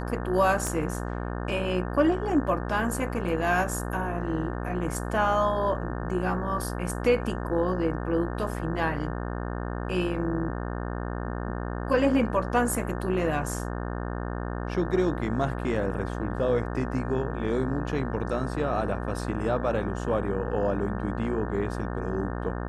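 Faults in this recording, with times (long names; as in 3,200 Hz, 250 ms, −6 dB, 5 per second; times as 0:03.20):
mains buzz 60 Hz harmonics 30 −32 dBFS
0:00.67: click −16 dBFS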